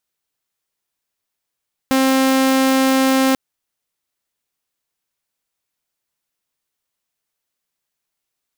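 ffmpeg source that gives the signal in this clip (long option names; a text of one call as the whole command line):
ffmpeg -f lavfi -i "aevalsrc='0.316*(2*mod(265*t,1)-1)':duration=1.44:sample_rate=44100" out.wav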